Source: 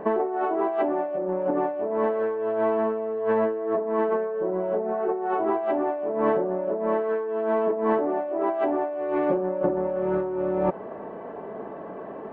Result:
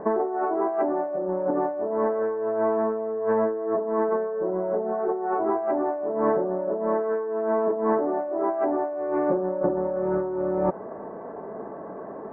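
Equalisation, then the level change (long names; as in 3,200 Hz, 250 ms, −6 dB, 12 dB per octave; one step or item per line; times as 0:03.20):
low-pass filter 1,700 Hz 24 dB per octave
0.0 dB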